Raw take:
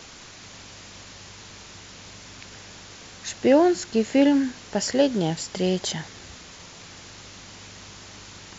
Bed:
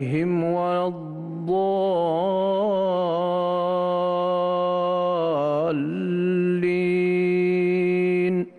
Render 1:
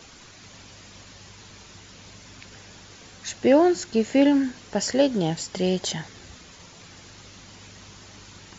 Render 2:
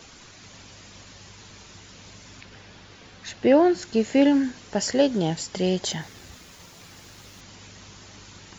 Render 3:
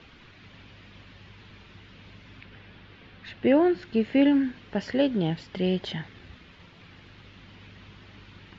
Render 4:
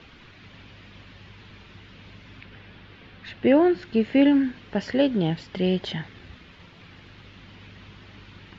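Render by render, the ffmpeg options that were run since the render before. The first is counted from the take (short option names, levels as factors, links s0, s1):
-af "afftdn=nr=6:nf=-45"
-filter_complex "[0:a]asettb=1/sr,asplit=3[s0][s1][s2];[s0]atrim=end=2.414[s3];[s1]atrim=start=2.41:end=3.83,asetpts=PTS-STARTPTS,afade=t=in:d=0.004:c=qsin,afade=t=out:st=1.416:d=0.004:c=qsin,lowpass=4600[s4];[s2]atrim=start=3.826[s5];[s3][s4]acrossfade=d=0.004:c1=hsin:c2=qsin[s6];[s6][s5]acrossfade=d=0.004:c1=qsin:c2=hsin,asettb=1/sr,asplit=3[s7][s8][s9];[s7]atrim=end=5.924[s10];[s8]atrim=start=5.92:end=7.41,asetpts=PTS-STARTPTS,afade=t=in:d=0.004:c=qsin,afade=t=out:st=1.486:d=0.004:c=qsin,aeval=exprs='val(0)*gte(abs(val(0)),0.00335)':c=same[s11];[s9]atrim=start=7.406[s12];[s10][s11]acrossfade=d=0.004:c1=hsin:c2=qsin[s13];[s13][s12]acrossfade=d=0.004:c1=qsin:c2=hsin"
-af "lowpass=f=3300:w=0.5412,lowpass=f=3300:w=1.3066,equalizer=f=740:t=o:w=1.8:g=-6"
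-af "volume=1.33"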